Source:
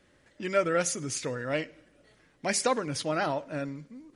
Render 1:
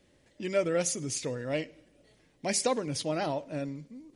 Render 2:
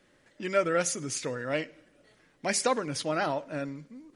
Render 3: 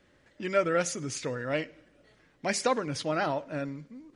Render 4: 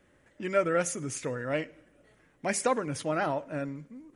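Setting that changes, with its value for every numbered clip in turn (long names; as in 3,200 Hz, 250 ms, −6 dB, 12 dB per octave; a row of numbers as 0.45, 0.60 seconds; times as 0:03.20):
parametric band, centre frequency: 1,400, 71, 12,000, 4,500 Hertz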